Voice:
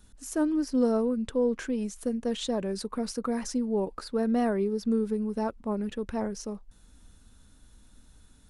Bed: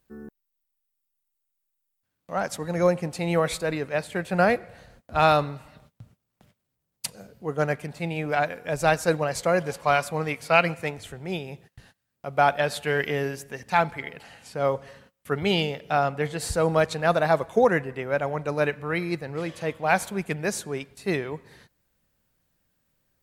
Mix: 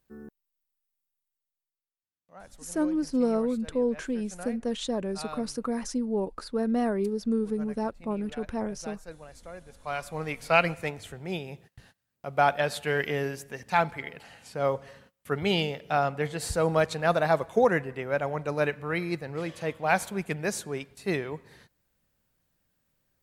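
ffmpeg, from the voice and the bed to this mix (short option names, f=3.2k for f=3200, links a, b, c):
-filter_complex "[0:a]adelay=2400,volume=-0.5dB[a];[1:a]volume=15.5dB,afade=t=out:st=0.94:d=0.99:silence=0.125893,afade=t=in:st=9.73:d=0.75:silence=0.112202[b];[a][b]amix=inputs=2:normalize=0"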